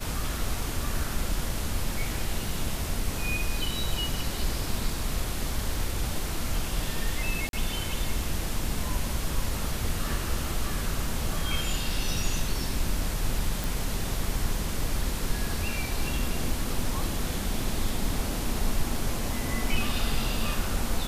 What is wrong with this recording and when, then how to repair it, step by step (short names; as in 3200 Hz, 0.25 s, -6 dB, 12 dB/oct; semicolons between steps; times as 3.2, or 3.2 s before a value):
7.49–7.53 gap 42 ms
13.64 pop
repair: de-click; interpolate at 7.49, 42 ms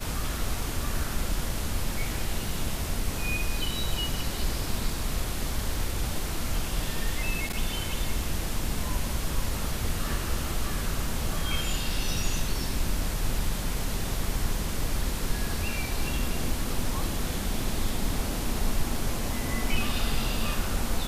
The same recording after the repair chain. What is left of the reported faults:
none